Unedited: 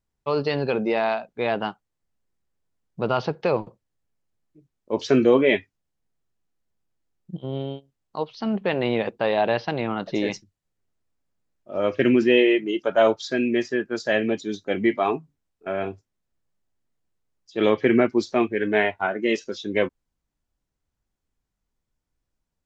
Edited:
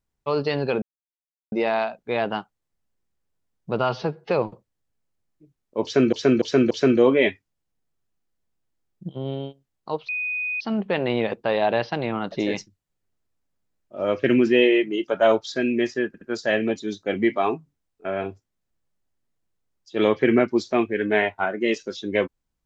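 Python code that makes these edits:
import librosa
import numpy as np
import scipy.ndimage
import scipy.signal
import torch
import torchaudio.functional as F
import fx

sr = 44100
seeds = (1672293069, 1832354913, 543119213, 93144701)

y = fx.edit(x, sr, fx.insert_silence(at_s=0.82, length_s=0.7),
    fx.stretch_span(start_s=3.14, length_s=0.31, factor=1.5),
    fx.repeat(start_s=4.98, length_s=0.29, count=4),
    fx.insert_tone(at_s=8.36, length_s=0.52, hz=2490.0, db=-24.0),
    fx.stutter(start_s=13.83, slice_s=0.07, count=3), tone=tone)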